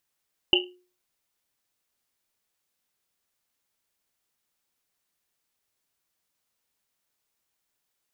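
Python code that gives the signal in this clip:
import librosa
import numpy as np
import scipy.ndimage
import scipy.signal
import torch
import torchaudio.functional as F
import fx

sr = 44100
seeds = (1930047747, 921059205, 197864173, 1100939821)

y = fx.risset_drum(sr, seeds[0], length_s=1.1, hz=360.0, decay_s=0.4, noise_hz=2900.0, noise_width_hz=260.0, noise_pct=65)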